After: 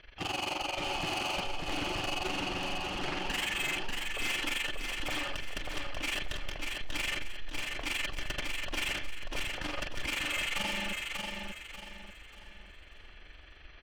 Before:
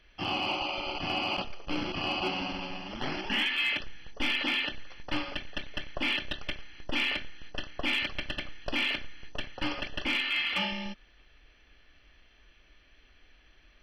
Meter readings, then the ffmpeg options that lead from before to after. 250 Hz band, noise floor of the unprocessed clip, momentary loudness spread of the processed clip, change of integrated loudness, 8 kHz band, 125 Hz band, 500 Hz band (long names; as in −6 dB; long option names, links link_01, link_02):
−4.5 dB, −61 dBFS, 19 LU, −3.0 dB, +12.0 dB, 0.0 dB, −1.0 dB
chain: -filter_complex "[0:a]lowpass=4100,equalizer=frequency=230:width=2.7:gain=-8.5,asplit=2[link_01][link_02];[link_02]acompressor=threshold=-40dB:ratio=6,volume=-3dB[link_03];[link_01][link_03]amix=inputs=2:normalize=0,asoftclip=type=hard:threshold=-30.5dB,tremolo=f=23:d=0.857,asoftclip=type=tanh:threshold=-34.5dB,asplit=2[link_04][link_05];[link_05]aecho=0:1:589|1178|1767|2356|2945:0.631|0.227|0.0818|0.0294|0.0106[link_06];[link_04][link_06]amix=inputs=2:normalize=0,volume=5.5dB"